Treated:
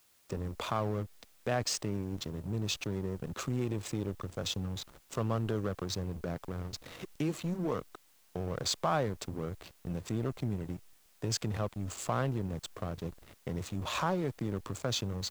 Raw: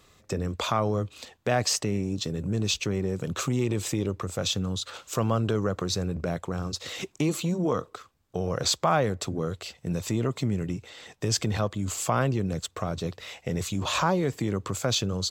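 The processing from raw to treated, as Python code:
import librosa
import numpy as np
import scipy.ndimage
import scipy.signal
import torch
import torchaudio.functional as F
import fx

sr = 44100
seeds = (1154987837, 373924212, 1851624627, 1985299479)

y = fx.backlash(x, sr, play_db=-29.0)
y = fx.quant_dither(y, sr, seeds[0], bits=10, dither='triangular')
y = y * librosa.db_to_amplitude(-6.5)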